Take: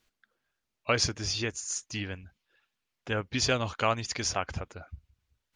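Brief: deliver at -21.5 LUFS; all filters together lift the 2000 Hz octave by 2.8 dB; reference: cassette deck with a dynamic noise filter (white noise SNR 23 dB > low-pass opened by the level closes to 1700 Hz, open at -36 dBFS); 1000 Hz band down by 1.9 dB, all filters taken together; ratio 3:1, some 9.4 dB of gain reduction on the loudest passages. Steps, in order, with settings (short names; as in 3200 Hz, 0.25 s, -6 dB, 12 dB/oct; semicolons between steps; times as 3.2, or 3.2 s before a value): bell 1000 Hz -4.5 dB; bell 2000 Hz +5 dB; compressor 3:1, threshold -34 dBFS; white noise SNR 23 dB; low-pass opened by the level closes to 1700 Hz, open at -36 dBFS; gain +15.5 dB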